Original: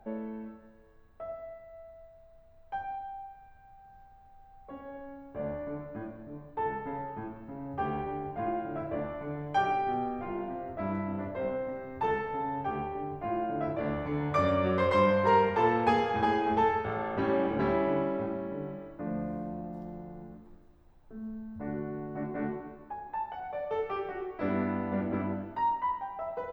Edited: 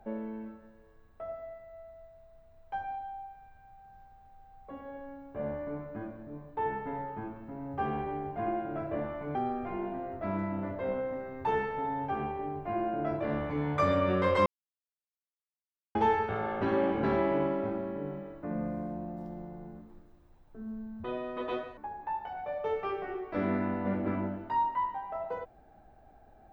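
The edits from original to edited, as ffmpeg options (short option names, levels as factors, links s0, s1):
-filter_complex "[0:a]asplit=6[s0][s1][s2][s3][s4][s5];[s0]atrim=end=9.352[s6];[s1]atrim=start=9.908:end=15.02,asetpts=PTS-STARTPTS,afade=t=out:st=5.108:d=0.004:c=hsin[s7];[s2]atrim=start=15.02:end=16.51,asetpts=PTS-STARTPTS,volume=0[s8];[s3]atrim=start=16.51:end=21.604,asetpts=PTS-STARTPTS,afade=t=in:d=0.004:c=hsin[s9];[s4]atrim=start=21.6:end=22.84,asetpts=PTS-STARTPTS,asetrate=74529,aresample=44100,atrim=end_sample=32357,asetpts=PTS-STARTPTS[s10];[s5]atrim=start=22.836[s11];[s7][s8][s9]concat=n=3:v=0:a=1[s12];[s6][s12]acrossfade=d=0.004:c1=hsin:c2=hsin[s13];[s13][s10]acrossfade=d=0.004:c1=hsin:c2=hsin[s14];[s14][s11]acrossfade=d=0.004:c1=hsin:c2=hsin"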